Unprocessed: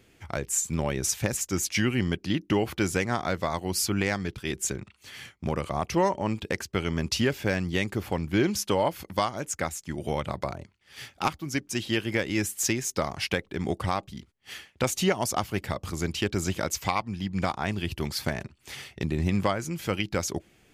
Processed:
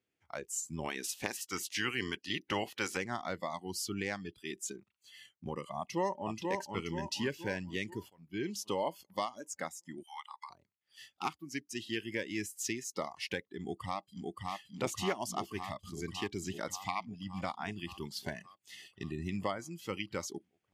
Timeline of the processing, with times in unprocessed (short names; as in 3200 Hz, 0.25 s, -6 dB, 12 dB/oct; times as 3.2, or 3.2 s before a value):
0.83–2.96 spectral limiter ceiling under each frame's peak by 16 dB
5.78–6.32 echo throw 0.48 s, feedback 55%, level -3.5 dB
8.1–8.6 fade in linear, from -15.5 dB
10.03–10.5 elliptic high-pass 830 Hz
13.58–14.55 echo throw 0.57 s, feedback 80%, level -1.5 dB
whole clip: HPF 180 Hz 6 dB/oct; spectral noise reduction 17 dB; high shelf 10000 Hz -7 dB; gain -8.5 dB